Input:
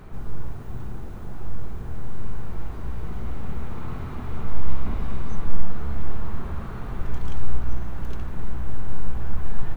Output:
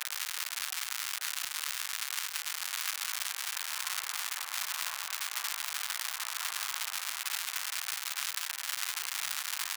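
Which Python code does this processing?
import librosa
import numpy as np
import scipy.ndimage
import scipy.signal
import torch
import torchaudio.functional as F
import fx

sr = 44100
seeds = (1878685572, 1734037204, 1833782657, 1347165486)

y = fx.wiener(x, sr, points=41)
y = fx.dmg_crackle(y, sr, seeds[0], per_s=270.0, level_db=-24.0)
y = scipy.signal.sosfilt(scipy.signal.butter(4, 1100.0, 'highpass', fs=sr, output='sos'), y)
y = y * 10.0 ** (7.5 / 20.0)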